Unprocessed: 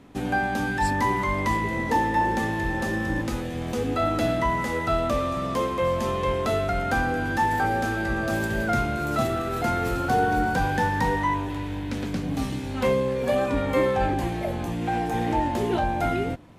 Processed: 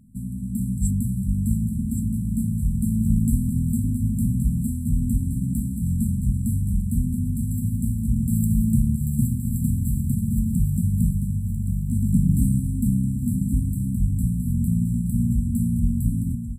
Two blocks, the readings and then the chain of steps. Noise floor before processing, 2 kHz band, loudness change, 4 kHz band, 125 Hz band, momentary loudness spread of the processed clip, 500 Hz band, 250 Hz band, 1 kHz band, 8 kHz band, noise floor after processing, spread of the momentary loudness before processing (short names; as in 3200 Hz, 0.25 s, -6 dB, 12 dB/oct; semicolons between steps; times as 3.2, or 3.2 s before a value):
-31 dBFS, under -40 dB, +1.5 dB, under -40 dB, +9.0 dB, 4 LU, under -40 dB, +4.5 dB, under -40 dB, +5.5 dB, -29 dBFS, 6 LU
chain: bell 970 Hz +8 dB 1.6 oct; AGC; brick-wall FIR band-stop 250–7400 Hz; echo 1.121 s -8.5 dB; gain +1.5 dB